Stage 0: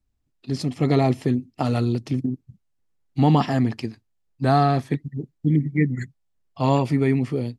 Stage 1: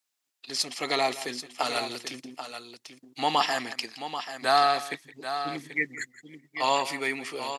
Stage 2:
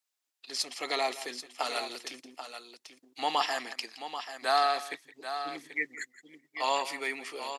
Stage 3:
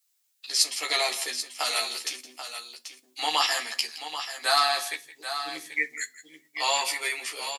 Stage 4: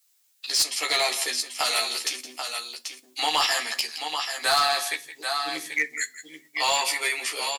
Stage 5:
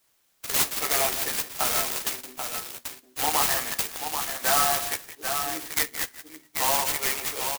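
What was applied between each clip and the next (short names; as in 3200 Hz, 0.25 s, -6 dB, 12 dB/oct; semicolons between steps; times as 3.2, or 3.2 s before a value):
HPF 750 Hz 12 dB/oct; high shelf 2100 Hz +10 dB; on a send: tapped delay 0.167/0.786 s -16/-10 dB
HPF 320 Hz 12 dB/oct; gain -4 dB
tilt +3.5 dB/oct; doubler 13 ms -2 dB; on a send at -11.5 dB: reverb RT60 0.30 s, pre-delay 6 ms
in parallel at +1 dB: compressor, threshold -33 dBFS, peak gain reduction 15.5 dB; on the sum: hard clip -16 dBFS, distortion -16 dB
clock jitter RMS 0.098 ms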